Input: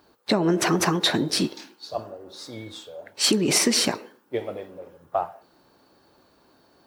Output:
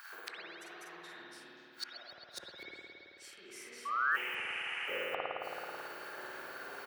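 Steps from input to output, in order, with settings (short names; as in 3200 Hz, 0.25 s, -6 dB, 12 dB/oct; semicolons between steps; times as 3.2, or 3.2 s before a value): doubler 46 ms -3.5 dB; in parallel at 0 dB: limiter -16.5 dBFS, peak gain reduction 9.5 dB; on the sum: low shelf 160 Hz +4 dB; LFO high-pass square 4 Hz 450–1500 Hz; flipped gate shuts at -25 dBFS, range -39 dB; painted sound rise, 3.85–4.46, 1100–3100 Hz -37 dBFS; graphic EQ 250/500/1000/4000 Hz -10/-12/-5/-9 dB; reverb RT60 2.9 s, pre-delay 54 ms, DRR -6 dB; spectral repair 4.18–4.9, 670–11000 Hz after; HPF 84 Hz; gain +6 dB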